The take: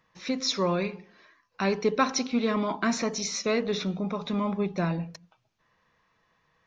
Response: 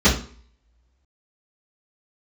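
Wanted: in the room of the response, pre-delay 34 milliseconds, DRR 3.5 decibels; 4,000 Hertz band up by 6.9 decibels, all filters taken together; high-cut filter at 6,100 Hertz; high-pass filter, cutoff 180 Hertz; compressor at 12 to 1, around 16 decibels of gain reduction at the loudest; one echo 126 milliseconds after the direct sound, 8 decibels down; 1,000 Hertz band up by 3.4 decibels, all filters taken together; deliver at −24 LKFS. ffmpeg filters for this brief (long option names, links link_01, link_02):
-filter_complex "[0:a]highpass=180,lowpass=6100,equalizer=frequency=1000:width_type=o:gain=3.5,equalizer=frequency=4000:width_type=o:gain=9,acompressor=threshold=-32dB:ratio=12,aecho=1:1:126:0.398,asplit=2[link_01][link_02];[1:a]atrim=start_sample=2205,adelay=34[link_03];[link_02][link_03]afir=irnorm=-1:irlink=0,volume=-24.5dB[link_04];[link_01][link_04]amix=inputs=2:normalize=0,volume=7dB"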